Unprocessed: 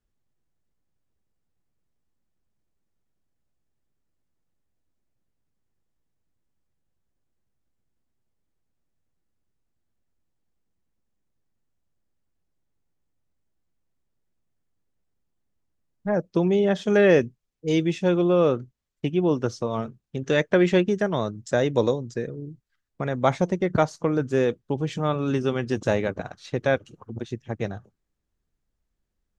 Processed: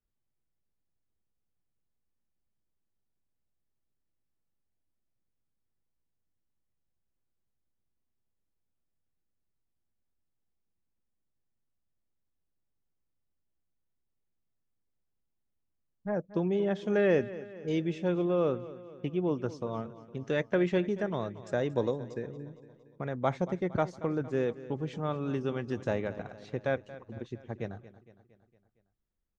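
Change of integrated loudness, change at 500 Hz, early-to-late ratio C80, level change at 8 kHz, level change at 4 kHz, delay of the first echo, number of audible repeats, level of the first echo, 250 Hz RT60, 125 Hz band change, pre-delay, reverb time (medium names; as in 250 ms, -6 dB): -8.0 dB, -8.0 dB, no reverb, no reading, -11.5 dB, 230 ms, 4, -16.5 dB, no reverb, -8.0 dB, no reverb, no reverb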